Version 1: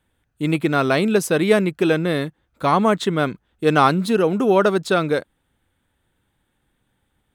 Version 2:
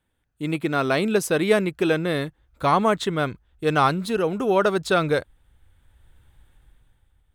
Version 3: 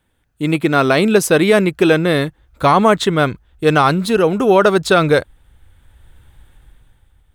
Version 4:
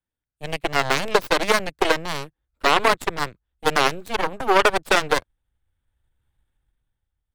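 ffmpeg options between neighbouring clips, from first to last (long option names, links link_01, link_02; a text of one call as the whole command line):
ffmpeg -i in.wav -af "asubboost=boost=8.5:cutoff=74,dynaudnorm=framelen=120:gausssize=13:maxgain=12dB,volume=-5.5dB" out.wav
ffmpeg -i in.wav -af "alimiter=level_in=10dB:limit=-1dB:release=50:level=0:latency=1,volume=-1dB" out.wav
ffmpeg -i in.wav -filter_complex "[0:a]aeval=exprs='0.841*(cos(1*acos(clip(val(0)/0.841,-1,1)))-cos(1*PI/2))+0.188*(cos(2*acos(clip(val(0)/0.841,-1,1)))-cos(2*PI/2))+0.299*(cos(3*acos(clip(val(0)/0.841,-1,1)))-cos(3*PI/2))+0.119*(cos(6*acos(clip(val(0)/0.841,-1,1)))-cos(6*PI/2))+0.0596*(cos(8*acos(clip(val(0)/0.841,-1,1)))-cos(8*PI/2))':channel_layout=same,acrossover=split=230[link_01][link_02];[link_01]volume=24dB,asoftclip=hard,volume=-24dB[link_03];[link_03][link_02]amix=inputs=2:normalize=0,volume=-2dB" out.wav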